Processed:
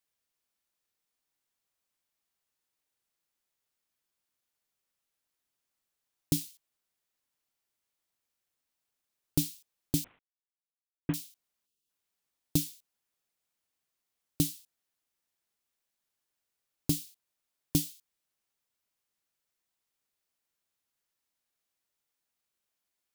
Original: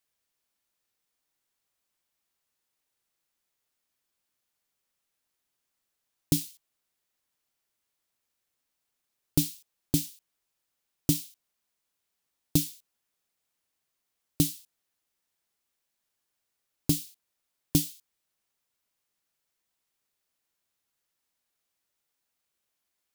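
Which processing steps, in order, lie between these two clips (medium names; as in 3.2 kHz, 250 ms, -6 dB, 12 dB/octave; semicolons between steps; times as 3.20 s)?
10.04–11.14 s: CVSD coder 16 kbps; 11.66–11.90 s: spectral selection erased 520–2500 Hz; trim -3.5 dB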